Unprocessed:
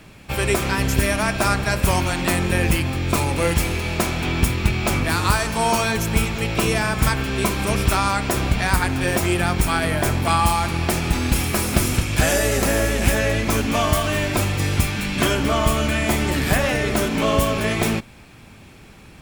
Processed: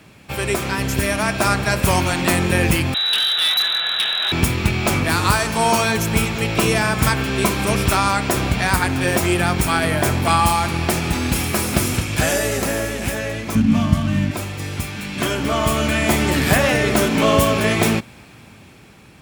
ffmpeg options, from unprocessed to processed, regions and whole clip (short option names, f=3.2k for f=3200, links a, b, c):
-filter_complex "[0:a]asettb=1/sr,asplit=3[a][b][c];[a]atrim=end=2.944[d];[b]atrim=start=2.94:end=4.32,asetpts=PTS-STARTPTS,afade=t=in:d=0.004:c=qsin,afade=t=out:st=1.376:d=0.004:c=qsin,lowpass=f=3.4k:t=q:w=0.5098,lowpass=f=3.4k:t=q:w=0.6013,lowpass=f=3.4k:t=q:w=0.9,lowpass=f=3.4k:t=q:w=2.563,afreqshift=-4000,volume=17dB,asoftclip=hard,volume=-17dB[e];[c]atrim=start=4.316[f];[d][e]acrossfade=d=0.004:c1=hsin:c2=qsin[g];[g][f]acrossfade=d=0.004:c1=qsin:c2=hsin,asettb=1/sr,asplit=3[h][i][j];[h]atrim=end=13.554[k];[i]atrim=start=13.55:end=14.31,asetpts=PTS-STARTPTS,afade=t=in:d=0.004:c=qsin,afade=t=out:st=0.756:d=0.004:c=qsin,lowshelf=f=300:t=q:w=3:g=10.5,adynamicsmooth=sensitivity=4.5:basefreq=3k[l];[j]atrim=start=14.306[m];[k][l]acrossfade=d=0.004:c1=hsin:c2=qsin[n];[n][m]acrossfade=d=0.004:c1=qsin:c2=hsin,highpass=76,dynaudnorm=f=240:g=11:m=11.5dB,volume=-1dB"